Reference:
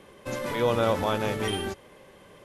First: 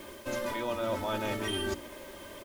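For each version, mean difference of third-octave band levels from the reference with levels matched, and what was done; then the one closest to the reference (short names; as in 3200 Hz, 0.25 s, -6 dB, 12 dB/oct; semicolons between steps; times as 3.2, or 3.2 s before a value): 7.5 dB: comb 3.2 ms, depth 71%; de-hum 58.56 Hz, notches 7; reverse; compressor, threshold -35 dBFS, peak gain reduction 15.5 dB; reverse; added noise white -61 dBFS; gain +4.5 dB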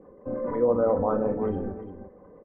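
11.5 dB: formant sharpening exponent 2; LPF 1400 Hz 24 dB/oct; comb 4 ms, depth 44%; on a send: tapped delay 42/346 ms -8.5/-11 dB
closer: first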